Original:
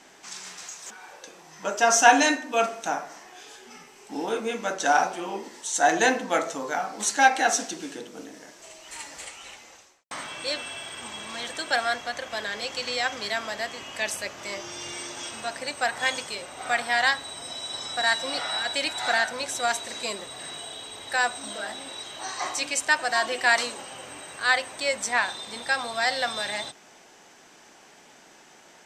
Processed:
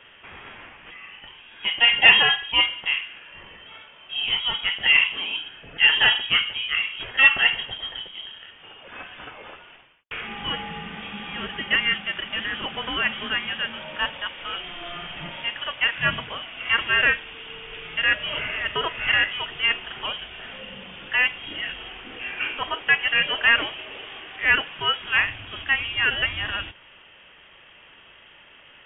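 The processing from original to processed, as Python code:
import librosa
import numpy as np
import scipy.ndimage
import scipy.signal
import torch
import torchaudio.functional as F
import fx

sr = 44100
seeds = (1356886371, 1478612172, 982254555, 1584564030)

p1 = np.clip(x, -10.0 ** (-13.5 / 20.0), 10.0 ** (-13.5 / 20.0))
p2 = x + (p1 * librosa.db_to_amplitude(-6.0))
y = fx.freq_invert(p2, sr, carrier_hz=3500)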